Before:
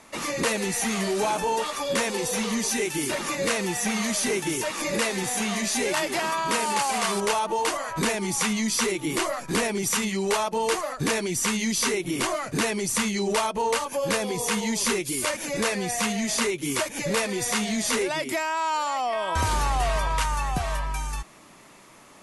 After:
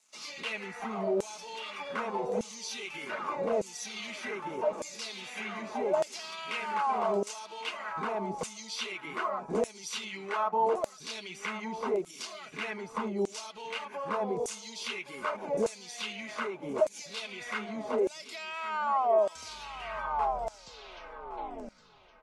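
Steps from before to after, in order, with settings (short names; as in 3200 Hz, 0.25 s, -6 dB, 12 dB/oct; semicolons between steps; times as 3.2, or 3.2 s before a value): tape stop at the end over 2.25 s; tilt -3 dB/oct; notch 1800 Hz, Q 5.6; comb 4.7 ms, depth 41%; in parallel at +1 dB: compressor, threshold -22 dBFS, peak gain reduction 13 dB; on the sum: crossover distortion -44.5 dBFS; LFO band-pass saw down 0.83 Hz 530–7800 Hz; feedback echo 1.116 s, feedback 25%, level -14 dB; gain -3.5 dB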